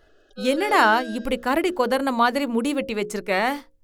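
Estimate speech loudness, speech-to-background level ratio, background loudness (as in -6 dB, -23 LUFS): -22.0 LUFS, 12.5 dB, -34.5 LUFS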